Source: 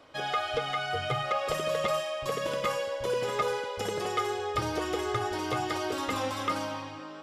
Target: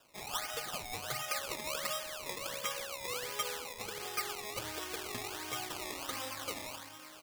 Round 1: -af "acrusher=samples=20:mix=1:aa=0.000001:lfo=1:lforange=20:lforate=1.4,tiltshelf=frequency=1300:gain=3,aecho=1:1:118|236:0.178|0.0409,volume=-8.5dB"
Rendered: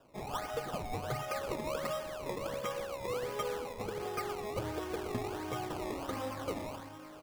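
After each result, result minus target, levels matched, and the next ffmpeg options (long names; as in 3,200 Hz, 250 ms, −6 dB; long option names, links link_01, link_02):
echo-to-direct +7 dB; 1,000 Hz band +2.5 dB
-af "acrusher=samples=20:mix=1:aa=0.000001:lfo=1:lforange=20:lforate=1.4,tiltshelf=frequency=1300:gain=3,aecho=1:1:118|236:0.0794|0.0183,volume=-8.5dB"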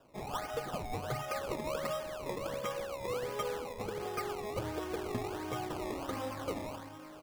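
1,000 Hz band +2.5 dB
-af "acrusher=samples=20:mix=1:aa=0.000001:lfo=1:lforange=20:lforate=1.4,tiltshelf=frequency=1300:gain=-7,aecho=1:1:118|236:0.0794|0.0183,volume=-8.5dB"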